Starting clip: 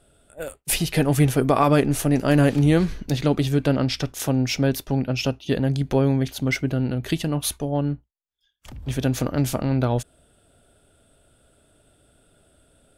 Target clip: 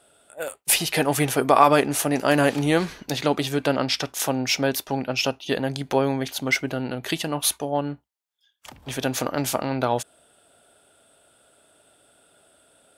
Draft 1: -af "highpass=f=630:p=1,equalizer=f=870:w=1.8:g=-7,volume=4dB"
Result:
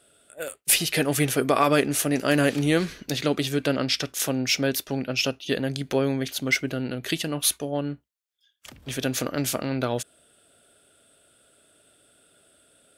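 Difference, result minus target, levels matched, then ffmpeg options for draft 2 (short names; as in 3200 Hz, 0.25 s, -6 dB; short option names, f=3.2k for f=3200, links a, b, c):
1000 Hz band -5.5 dB
-af "highpass=f=630:p=1,equalizer=f=870:w=1.8:g=4,volume=4dB"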